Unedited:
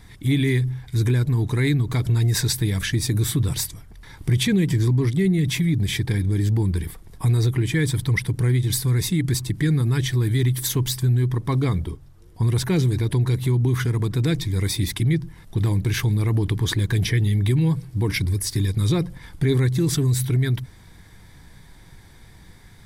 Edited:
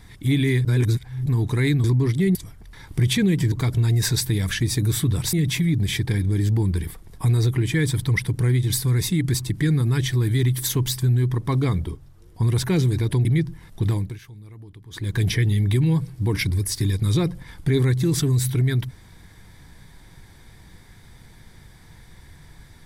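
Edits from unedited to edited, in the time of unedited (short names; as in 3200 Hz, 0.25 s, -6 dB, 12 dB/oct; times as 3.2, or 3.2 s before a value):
0.65–1.26 reverse
1.84–3.65 swap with 4.82–5.33
13.25–15 cut
15.63–16.96 dip -21.5 dB, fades 0.31 s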